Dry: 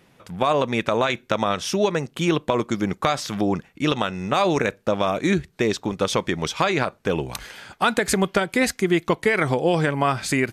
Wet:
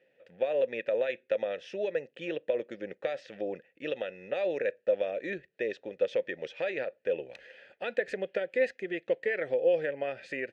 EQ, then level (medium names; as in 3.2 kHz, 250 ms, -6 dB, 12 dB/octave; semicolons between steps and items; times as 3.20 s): vowel filter e; distance through air 59 m; 0.0 dB